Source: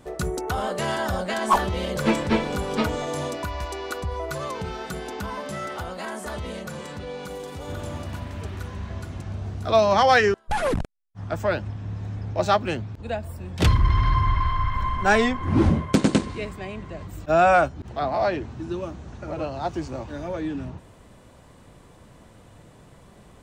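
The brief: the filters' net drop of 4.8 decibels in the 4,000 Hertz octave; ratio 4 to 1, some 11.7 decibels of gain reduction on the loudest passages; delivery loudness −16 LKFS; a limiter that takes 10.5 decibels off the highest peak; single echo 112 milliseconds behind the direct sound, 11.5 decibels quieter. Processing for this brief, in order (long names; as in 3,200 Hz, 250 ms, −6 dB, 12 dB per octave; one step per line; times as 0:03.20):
parametric band 4,000 Hz −6.5 dB
downward compressor 4 to 1, threshold −28 dBFS
brickwall limiter −23 dBFS
single-tap delay 112 ms −11.5 dB
level +17.5 dB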